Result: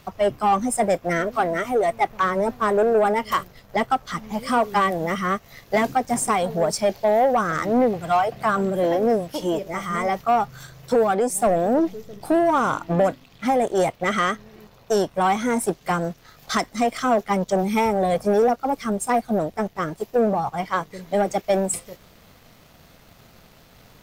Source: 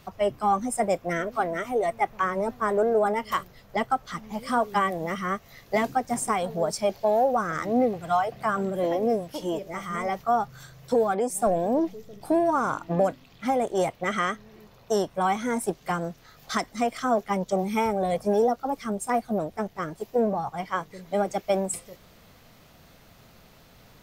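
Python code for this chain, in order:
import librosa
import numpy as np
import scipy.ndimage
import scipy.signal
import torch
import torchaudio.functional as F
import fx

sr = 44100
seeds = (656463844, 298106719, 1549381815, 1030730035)

y = fx.leveller(x, sr, passes=1)
y = y * librosa.db_to_amplitude(2.0)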